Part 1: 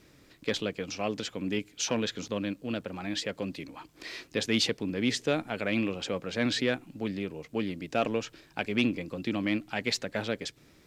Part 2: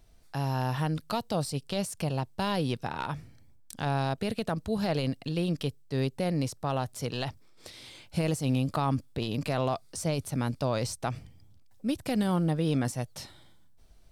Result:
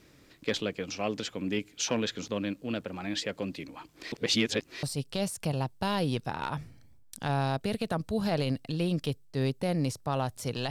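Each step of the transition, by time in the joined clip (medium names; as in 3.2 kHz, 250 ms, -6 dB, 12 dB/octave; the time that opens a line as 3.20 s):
part 1
4.12–4.83 s: reverse
4.83 s: go over to part 2 from 1.40 s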